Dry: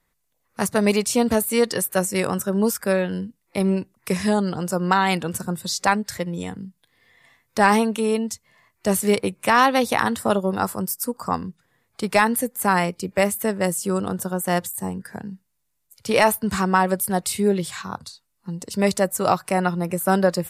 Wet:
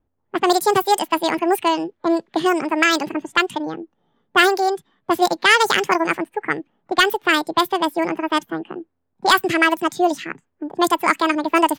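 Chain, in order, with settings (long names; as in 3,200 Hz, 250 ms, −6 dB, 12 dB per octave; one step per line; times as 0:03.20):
change of speed 1.74×
bit reduction 12 bits
low-pass that shuts in the quiet parts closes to 700 Hz, open at −15.5 dBFS
level +3 dB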